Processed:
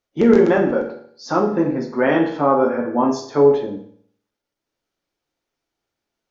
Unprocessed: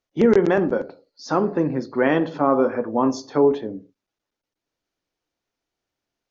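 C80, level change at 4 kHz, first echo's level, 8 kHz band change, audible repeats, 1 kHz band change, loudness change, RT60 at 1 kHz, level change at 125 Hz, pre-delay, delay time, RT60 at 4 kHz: 11.0 dB, +2.0 dB, no echo audible, can't be measured, no echo audible, +3.0 dB, +3.0 dB, 0.60 s, +1.5 dB, 9 ms, no echo audible, 0.55 s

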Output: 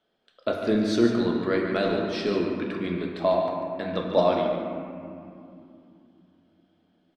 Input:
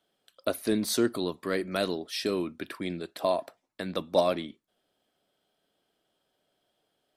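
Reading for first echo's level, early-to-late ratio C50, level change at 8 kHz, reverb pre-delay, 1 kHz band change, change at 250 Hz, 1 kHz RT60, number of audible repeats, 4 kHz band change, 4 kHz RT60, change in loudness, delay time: −9.5 dB, 1.5 dB, can't be measured, 5 ms, +5.5 dB, +6.0 dB, 2.5 s, 1, −0.5 dB, 1.4 s, +4.5 dB, 144 ms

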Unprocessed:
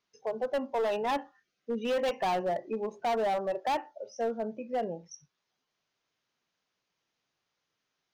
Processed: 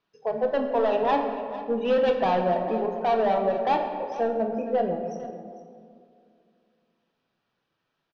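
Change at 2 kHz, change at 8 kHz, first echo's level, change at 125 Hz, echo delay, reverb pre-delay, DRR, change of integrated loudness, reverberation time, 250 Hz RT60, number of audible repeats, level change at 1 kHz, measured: +4.0 dB, can't be measured, −15.5 dB, +9.5 dB, 451 ms, 6 ms, 3.0 dB, +6.5 dB, 2.3 s, 2.8 s, 1, +6.5 dB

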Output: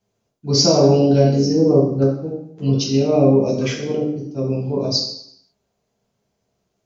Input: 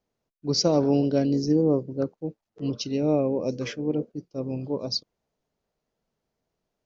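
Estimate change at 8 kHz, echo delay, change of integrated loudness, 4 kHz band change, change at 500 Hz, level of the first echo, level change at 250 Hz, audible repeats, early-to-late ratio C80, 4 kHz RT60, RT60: can't be measured, no echo audible, +8.5 dB, +9.5 dB, +9.0 dB, no echo audible, +7.0 dB, no echo audible, 7.0 dB, 0.70 s, 0.70 s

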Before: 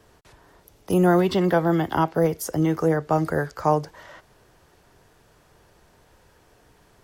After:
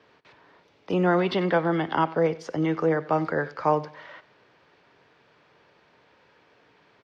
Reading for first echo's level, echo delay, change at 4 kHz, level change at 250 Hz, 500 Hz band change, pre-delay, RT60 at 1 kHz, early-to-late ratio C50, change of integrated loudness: −19.0 dB, 93 ms, −0.5 dB, −4.0 dB, −2.0 dB, no reverb audible, no reverb audible, no reverb audible, −3.0 dB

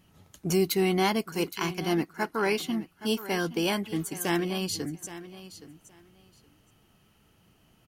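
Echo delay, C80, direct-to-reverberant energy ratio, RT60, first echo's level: 820 ms, no reverb audible, no reverb audible, no reverb audible, −15.0 dB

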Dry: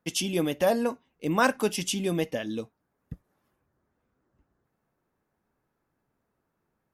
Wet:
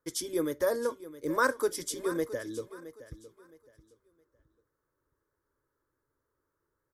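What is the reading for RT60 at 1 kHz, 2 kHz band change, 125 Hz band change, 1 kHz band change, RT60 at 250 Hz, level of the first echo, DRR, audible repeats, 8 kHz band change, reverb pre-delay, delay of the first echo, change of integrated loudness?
no reverb audible, −3.0 dB, −13.0 dB, −4.5 dB, no reverb audible, −15.5 dB, no reverb audible, 2, −3.5 dB, no reverb audible, 667 ms, −4.0 dB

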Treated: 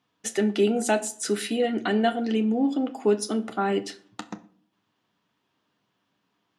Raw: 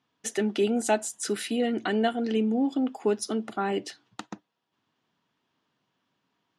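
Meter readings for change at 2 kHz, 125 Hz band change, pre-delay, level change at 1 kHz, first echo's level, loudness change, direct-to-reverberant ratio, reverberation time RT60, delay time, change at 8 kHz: +2.5 dB, can't be measured, 10 ms, +2.5 dB, no echo audible, +2.5 dB, 8.0 dB, 0.50 s, no echo audible, +2.0 dB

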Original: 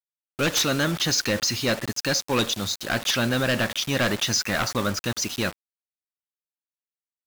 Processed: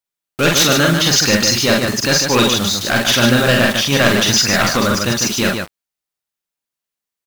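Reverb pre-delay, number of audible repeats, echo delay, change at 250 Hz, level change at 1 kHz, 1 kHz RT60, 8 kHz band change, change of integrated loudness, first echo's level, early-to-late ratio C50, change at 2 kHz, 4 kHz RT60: no reverb audible, 2, 43 ms, +11.0 dB, +10.5 dB, no reverb audible, +10.5 dB, +10.5 dB, −4.5 dB, no reverb audible, +10.5 dB, no reverb audible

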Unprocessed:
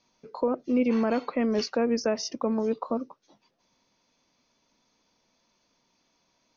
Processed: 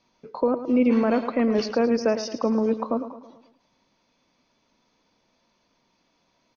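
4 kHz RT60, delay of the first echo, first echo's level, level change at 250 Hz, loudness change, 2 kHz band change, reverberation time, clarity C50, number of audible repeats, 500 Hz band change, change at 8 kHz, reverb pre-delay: no reverb audible, 109 ms, −11.5 dB, +4.5 dB, +4.0 dB, +3.5 dB, no reverb audible, no reverb audible, 4, +4.0 dB, can't be measured, no reverb audible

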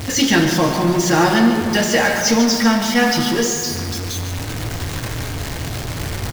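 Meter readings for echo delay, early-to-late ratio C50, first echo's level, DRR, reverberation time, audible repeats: 144 ms, 4.0 dB, −9.0 dB, 3.0 dB, 2.7 s, 1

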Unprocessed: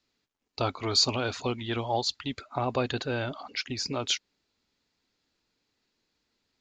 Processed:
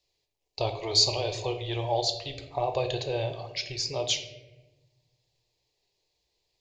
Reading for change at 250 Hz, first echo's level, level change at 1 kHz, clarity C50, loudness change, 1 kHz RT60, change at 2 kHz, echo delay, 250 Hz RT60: −6.0 dB, no echo audible, −0.5 dB, 9.0 dB, +1.0 dB, 0.85 s, −4.0 dB, no echo audible, 1.6 s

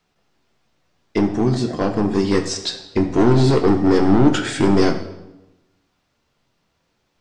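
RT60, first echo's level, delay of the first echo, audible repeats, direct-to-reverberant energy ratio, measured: 0.95 s, no echo audible, no echo audible, no echo audible, 4.0 dB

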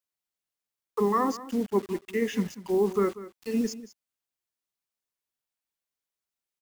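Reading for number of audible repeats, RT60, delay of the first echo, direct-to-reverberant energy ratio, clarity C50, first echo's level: 1, no reverb audible, 191 ms, no reverb audible, no reverb audible, −16.0 dB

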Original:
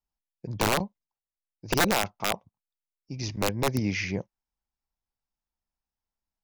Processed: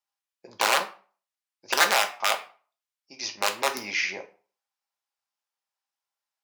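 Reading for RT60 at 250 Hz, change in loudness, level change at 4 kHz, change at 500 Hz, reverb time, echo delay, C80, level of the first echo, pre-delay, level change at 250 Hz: 0.40 s, +3.0 dB, +5.5 dB, −1.5 dB, 0.40 s, no echo audible, 18.0 dB, no echo audible, 3 ms, −14.0 dB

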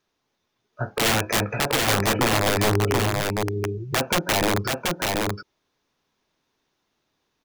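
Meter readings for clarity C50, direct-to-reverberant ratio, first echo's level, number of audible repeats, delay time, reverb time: no reverb audible, no reverb audible, −3.0 dB, 1, 730 ms, no reverb audible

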